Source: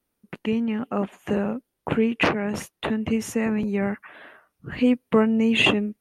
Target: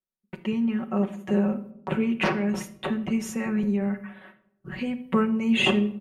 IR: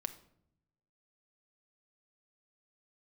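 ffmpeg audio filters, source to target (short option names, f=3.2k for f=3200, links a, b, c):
-filter_complex "[0:a]agate=range=-19dB:threshold=-45dB:ratio=16:detection=peak,aecho=1:1:5.3:0.67,asettb=1/sr,asplit=3[a][b][c];[a]atrim=end=3.714[d];[b]atrim=start=3.71:end=5,asetpts=PTS-STARTPTS,afade=t=in:d=0.004:c=qsin,afade=t=out:st=1.286:d=0.004:c=qsin,acompressor=threshold=-22dB:ratio=2[e];[c]atrim=start=4.996[f];[d][e]acrossfade=d=0.004:c1=hsin:c2=qsin[g];[g][f]acrossfade=d=0.004:c1=qsin:c2=hsin[h];[1:a]atrim=start_sample=2205[i];[h][i]afir=irnorm=-1:irlink=0,volume=-3.5dB"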